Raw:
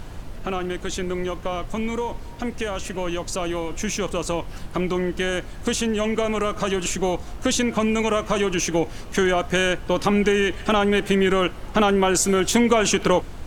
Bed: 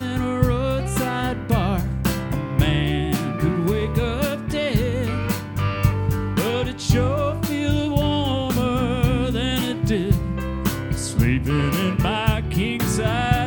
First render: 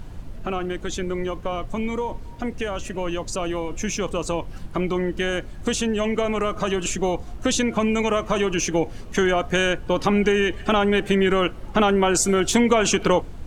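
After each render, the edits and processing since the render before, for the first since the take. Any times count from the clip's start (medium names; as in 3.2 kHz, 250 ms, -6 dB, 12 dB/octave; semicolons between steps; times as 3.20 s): noise reduction 7 dB, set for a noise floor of -36 dBFS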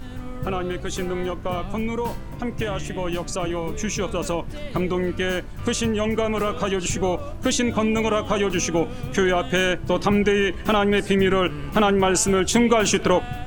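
add bed -13.5 dB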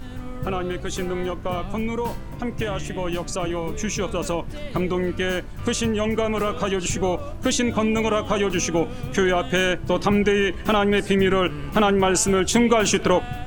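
no audible change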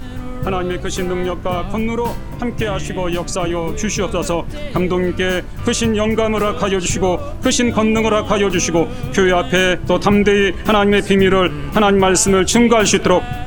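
trim +6.5 dB; peak limiter -2 dBFS, peak gain reduction 2.5 dB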